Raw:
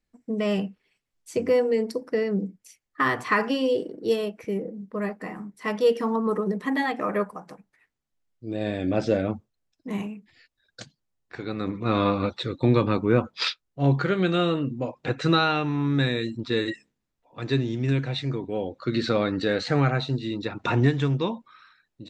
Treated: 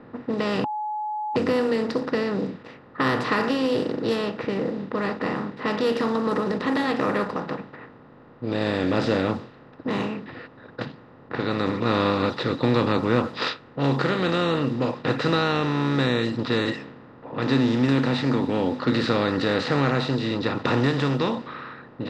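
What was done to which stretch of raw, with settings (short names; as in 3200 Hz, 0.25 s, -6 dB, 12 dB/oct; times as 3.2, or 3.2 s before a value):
0.64–1.36 bleep 849 Hz -20 dBFS
17.46–18.93 small resonant body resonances 250/870 Hz, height 16 dB, ringing for 95 ms
whole clip: per-bin compression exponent 0.4; low-pass opened by the level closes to 1200 Hz, open at -12 dBFS; gain -6 dB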